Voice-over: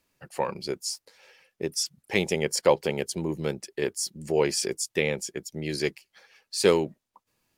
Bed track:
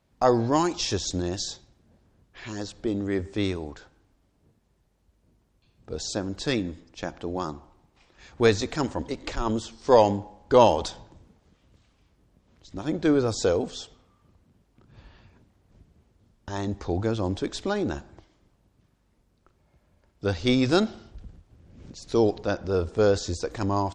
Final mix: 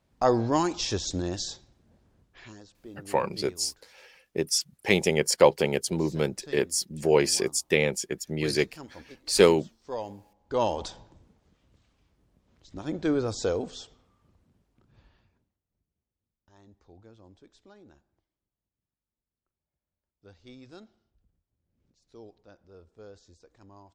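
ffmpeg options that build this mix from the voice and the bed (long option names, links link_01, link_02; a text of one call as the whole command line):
ffmpeg -i stem1.wav -i stem2.wav -filter_complex "[0:a]adelay=2750,volume=2.5dB[link_01];[1:a]volume=11dB,afade=type=out:start_time=2.19:duration=0.42:silence=0.16788,afade=type=in:start_time=10.34:duration=0.59:silence=0.223872,afade=type=out:start_time=14.44:duration=1.18:silence=0.0749894[link_02];[link_01][link_02]amix=inputs=2:normalize=0" out.wav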